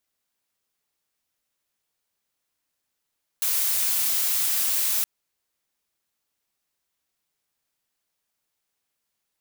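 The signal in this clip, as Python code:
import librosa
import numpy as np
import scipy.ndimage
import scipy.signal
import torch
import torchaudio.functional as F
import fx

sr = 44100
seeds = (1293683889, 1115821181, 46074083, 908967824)

y = fx.noise_colour(sr, seeds[0], length_s=1.62, colour='blue', level_db=-23.5)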